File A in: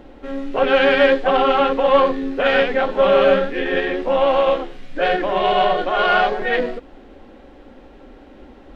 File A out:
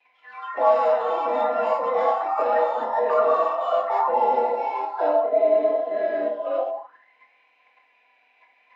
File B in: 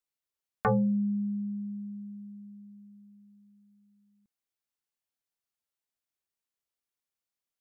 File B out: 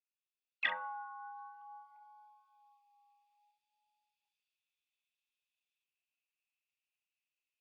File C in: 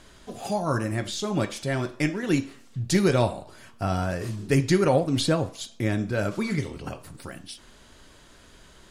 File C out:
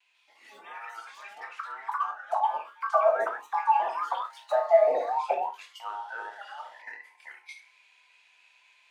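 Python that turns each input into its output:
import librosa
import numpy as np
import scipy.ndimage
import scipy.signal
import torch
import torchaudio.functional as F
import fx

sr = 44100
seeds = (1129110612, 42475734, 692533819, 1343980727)

p1 = fx.band_invert(x, sr, width_hz=1000)
p2 = fx.level_steps(p1, sr, step_db=20)
p3 = p1 + (p2 * 10.0 ** (1.5 / 20.0))
p4 = fx.vibrato(p3, sr, rate_hz=0.58, depth_cents=22.0)
p5 = fx.rev_schroeder(p4, sr, rt60_s=0.63, comb_ms=31, drr_db=14.5)
p6 = fx.auto_wah(p5, sr, base_hz=650.0, top_hz=2600.0, q=13.0, full_db=-14.0, direction='down')
p7 = scipy.signal.sosfilt(scipy.signal.butter(2, 74.0, 'highpass', fs=sr, output='sos'), p6)
p8 = fx.low_shelf_res(p7, sr, hz=150.0, db=-12.5, q=1.5)
p9 = fx.rider(p8, sr, range_db=10, speed_s=2.0)
p10 = fx.bass_treble(p9, sr, bass_db=0, treble_db=8)
p11 = fx.room_early_taps(p10, sr, ms=(27, 70), db=(-6.0, -9.5))
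y = fx.echo_pitch(p11, sr, ms=145, semitones=5, count=2, db_per_echo=-3.0)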